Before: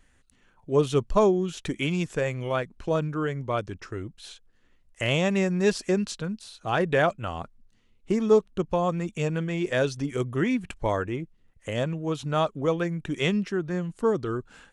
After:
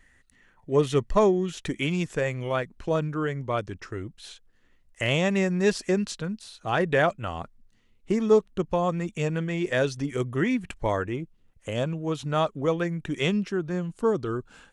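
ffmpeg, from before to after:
-af "asetnsamples=n=441:p=0,asendcmd='1.51 equalizer g 3.5;11.13 equalizer g -7;12.01 equalizer g 3;13.23 equalizer g -4.5',equalizer=f=1.9k:t=o:w=0.21:g=14"

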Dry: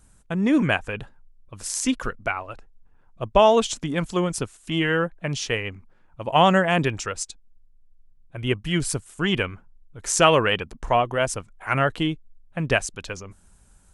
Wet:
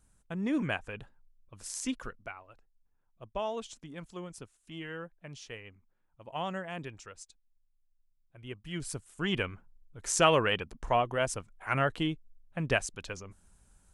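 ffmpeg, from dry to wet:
-af "volume=1dB,afade=t=out:st=1.91:d=0.47:silence=0.398107,afade=t=in:st=8.53:d=0.95:silence=0.251189"

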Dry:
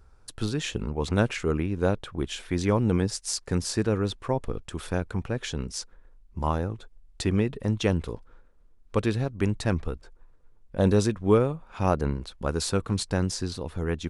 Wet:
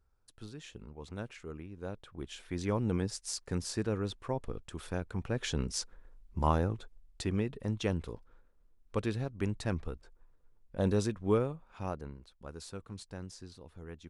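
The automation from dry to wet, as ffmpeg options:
-af "volume=-1.5dB,afade=t=in:st=1.8:d=1.01:silence=0.316228,afade=t=in:st=5.11:d=0.44:silence=0.473151,afade=t=out:st=6.72:d=0.51:silence=0.473151,afade=t=out:st=11.39:d=0.7:silence=0.316228"

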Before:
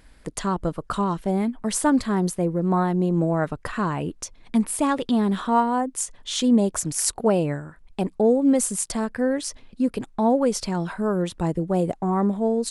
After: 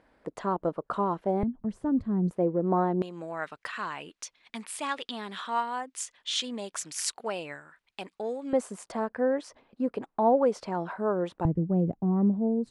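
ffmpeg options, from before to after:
-af "asetnsamples=n=441:p=0,asendcmd='1.43 bandpass f 110;2.31 bandpass f 510;3.02 bandpass f 2800;8.53 bandpass f 730;11.45 bandpass f 150',bandpass=f=610:t=q:w=0.86:csg=0"

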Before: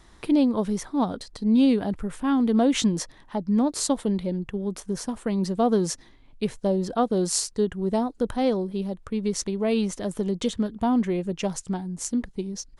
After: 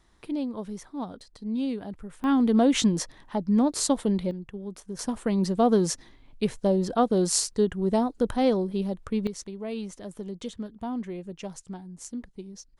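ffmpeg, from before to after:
-af "asetnsamples=n=441:p=0,asendcmd='2.24 volume volume 0dB;4.31 volume volume -8dB;4.99 volume volume 0.5dB;9.27 volume volume -10dB',volume=-10dB"

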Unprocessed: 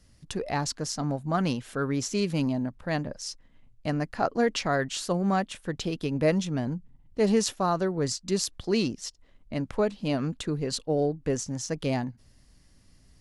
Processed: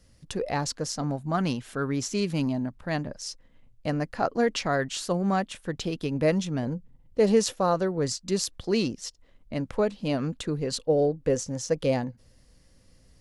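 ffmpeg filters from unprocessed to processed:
-af "asetnsamples=n=441:p=0,asendcmd='1.07 equalizer g -3;3.21 equalizer g 8;4.17 equalizer g 1.5;6.63 equalizer g 13;7.74 equalizer g 5;10.82 equalizer g 13',equalizer=f=510:t=o:w=0.23:g=8"

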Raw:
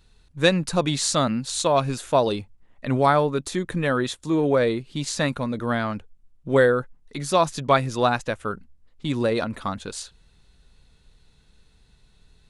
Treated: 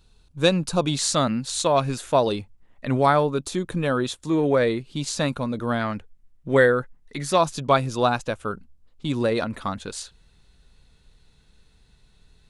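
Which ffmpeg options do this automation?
-af "asetnsamples=n=441:p=0,asendcmd='0.99 equalizer g 0;3.23 equalizer g -8;4.17 equalizer g 2.5;4.83 equalizer g -6;5.81 equalizer g 5.5;7.38 equalizer g -6.5;9.17 equalizer g 0.5',equalizer=f=1.9k:t=o:w=0.36:g=-10"

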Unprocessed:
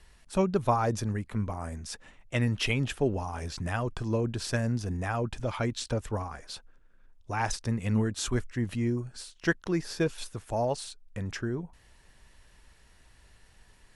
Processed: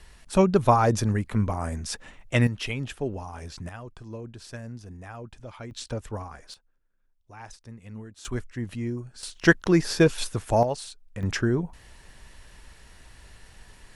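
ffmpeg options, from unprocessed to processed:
-af "asetnsamples=n=441:p=0,asendcmd='2.47 volume volume -3dB;3.69 volume volume -10dB;5.71 volume volume -2dB;6.54 volume volume -14dB;8.25 volume volume -2dB;9.23 volume volume 9dB;10.63 volume volume 1dB;11.23 volume volume 8.5dB',volume=6.5dB"

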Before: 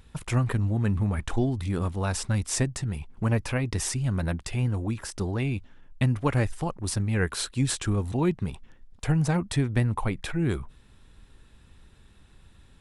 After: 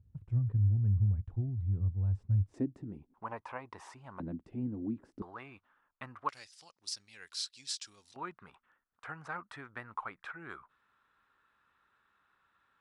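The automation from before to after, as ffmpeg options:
-af "asetnsamples=n=441:p=0,asendcmd='2.54 bandpass f 290;3.14 bandpass f 970;4.2 bandpass f 270;5.22 bandpass f 1200;6.29 bandpass f 5000;8.16 bandpass f 1300',bandpass=f=100:t=q:w=3.6:csg=0"

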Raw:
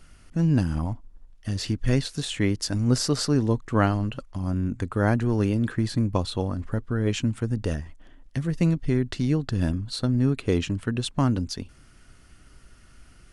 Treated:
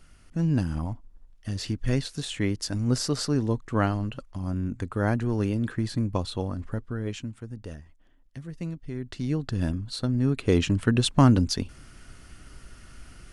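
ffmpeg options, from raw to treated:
-af "volume=14dB,afade=t=out:st=6.66:d=0.67:silence=0.354813,afade=t=in:st=8.93:d=0.52:silence=0.334965,afade=t=in:st=10.22:d=0.68:silence=0.421697"

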